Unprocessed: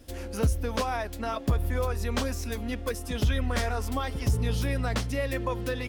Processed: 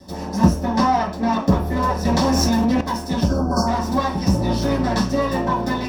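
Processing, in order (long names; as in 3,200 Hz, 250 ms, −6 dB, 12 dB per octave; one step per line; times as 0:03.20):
lower of the sound and its delayed copy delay 1.1 ms
floating-point word with a short mantissa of 6 bits
0:00.64–0:01.33: high-shelf EQ 7,300 Hz −9 dB
0:03.23–0:03.68: time-frequency box erased 1,600–4,300 Hz
convolution reverb RT60 0.40 s, pre-delay 3 ms, DRR −6 dB
0:02.05–0:02.81: envelope flattener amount 100%
level −1 dB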